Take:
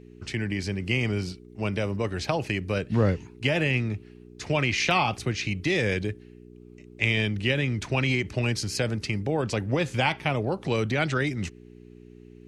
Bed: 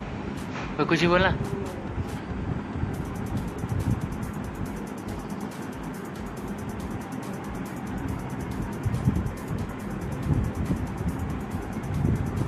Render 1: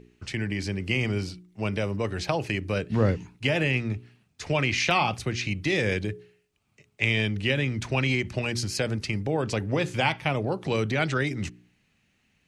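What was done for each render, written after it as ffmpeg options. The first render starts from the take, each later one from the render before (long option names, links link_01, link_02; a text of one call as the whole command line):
ffmpeg -i in.wav -af "bandreject=frequency=60:width_type=h:width=4,bandreject=frequency=120:width_type=h:width=4,bandreject=frequency=180:width_type=h:width=4,bandreject=frequency=240:width_type=h:width=4,bandreject=frequency=300:width_type=h:width=4,bandreject=frequency=360:width_type=h:width=4,bandreject=frequency=420:width_type=h:width=4" out.wav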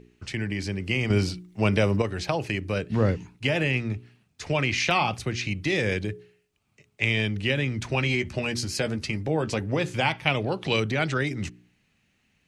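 ffmpeg -i in.wav -filter_complex "[0:a]asettb=1/sr,asplit=3[link_01][link_02][link_03];[link_01]atrim=end=1.104[link_04];[link_02]atrim=start=1.1:end=2.02,asetpts=PTS-STARTPTS,afade=type=in:duration=0.004:curve=qsin,afade=type=out:start_time=0.916:duration=0.004:curve=qsin,acontrast=62[link_05];[link_03]atrim=start=2.016[link_06];[link_04][link_05]acrossfade=duration=0.004:curve1=hsin:curve2=qsin[link_07];[link_07][link_06]acrossfade=duration=0.004:curve1=qsin:curve2=hsin,asettb=1/sr,asplit=3[link_08][link_09][link_10];[link_08]atrim=end=7.884[link_11];[link_09]atrim=start=7.88:end=9.6,asetpts=PTS-STARTPTS,afade=type=in:duration=0.004:curve=qsin,afade=type=out:start_time=1.716:duration=0.004:curve=qsin,asplit=2[link_12][link_13];[link_13]adelay=13,volume=-9dB[link_14];[link_12][link_14]amix=inputs=2:normalize=0,atrim=end_sample=75852[link_15];[link_10]atrim=start=9.596[link_16];[link_11][link_15]acrossfade=duration=0.004:curve1=hsin:curve2=qsin[link_17];[link_17][link_16]acrossfade=duration=0.004:curve1=qsin:curve2=hsin,asettb=1/sr,asplit=3[link_18][link_19][link_20];[link_18]atrim=end=10.274[link_21];[link_19]atrim=start=10.27:end=10.8,asetpts=PTS-STARTPTS,afade=type=in:duration=0.004:curve=qsin,afade=type=out:start_time=0.526:duration=0.004:curve=qsin,equalizer=frequency=3100:width=1:gain=10.5[link_22];[link_20]atrim=start=10.796[link_23];[link_21][link_22]acrossfade=duration=0.004:curve1=hsin:curve2=qsin[link_24];[link_24][link_23]acrossfade=duration=0.004:curve1=qsin:curve2=hsin" out.wav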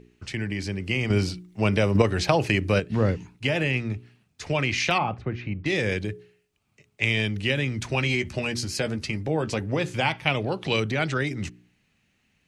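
ffmpeg -i in.wav -filter_complex "[0:a]asettb=1/sr,asplit=3[link_01][link_02][link_03];[link_01]atrim=end=1.954[link_04];[link_02]atrim=start=1.95:end=2.8,asetpts=PTS-STARTPTS,afade=type=in:duration=0.004:curve=qsin,afade=type=out:start_time=0.846:duration=0.004:curve=qsin,acontrast=50[link_05];[link_03]atrim=start=2.796[link_06];[link_04][link_05]acrossfade=duration=0.004:curve1=hsin:curve2=qsin[link_07];[link_07][link_06]acrossfade=duration=0.004:curve1=qsin:curve2=hsin,asettb=1/sr,asplit=3[link_08][link_09][link_10];[link_08]atrim=end=4.984[link_11];[link_09]atrim=start=4.98:end=5.66,asetpts=PTS-STARTPTS,afade=type=in:duration=0.004:curve=qsin,afade=type=out:start_time=0.676:duration=0.004:curve=qsin,lowpass=1500[link_12];[link_10]atrim=start=5.656[link_13];[link_11][link_12]acrossfade=duration=0.004:curve1=hsin:curve2=qsin[link_14];[link_14][link_13]acrossfade=duration=0.004:curve1=qsin:curve2=hsin,asettb=1/sr,asplit=3[link_15][link_16][link_17];[link_15]atrim=end=7.024[link_18];[link_16]atrim=start=7.02:end=8.48,asetpts=PTS-STARTPTS,afade=type=in:duration=0.004:curve=qsin,afade=type=out:start_time=1.456:duration=0.004:curve=qsin,highshelf=frequency=5000:gain=4.5[link_19];[link_17]atrim=start=8.476[link_20];[link_18][link_19]acrossfade=duration=0.004:curve1=hsin:curve2=qsin[link_21];[link_21][link_20]acrossfade=duration=0.004:curve1=qsin:curve2=hsin" out.wav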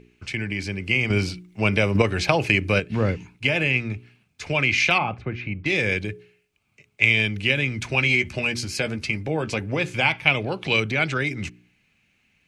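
ffmpeg -i in.wav -af "equalizer=frequency=2200:width_type=o:width=0.74:gain=9,bandreject=frequency=1900:width=8.1" out.wav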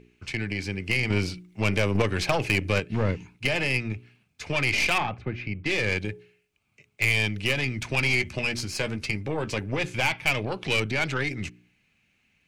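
ffmpeg -i in.wav -af "aeval=exprs='0.841*(cos(1*acos(clip(val(0)/0.841,-1,1)))-cos(1*PI/2))+0.075*(cos(3*acos(clip(val(0)/0.841,-1,1)))-cos(3*PI/2))+0.0668*(cos(8*acos(clip(val(0)/0.841,-1,1)))-cos(8*PI/2))':channel_layout=same,asoftclip=type=tanh:threshold=-13.5dB" out.wav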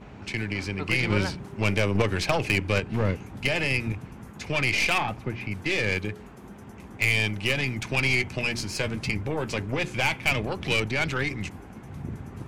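ffmpeg -i in.wav -i bed.wav -filter_complex "[1:a]volume=-11dB[link_01];[0:a][link_01]amix=inputs=2:normalize=0" out.wav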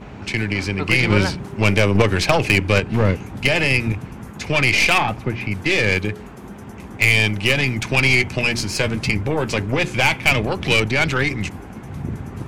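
ffmpeg -i in.wav -af "volume=8dB" out.wav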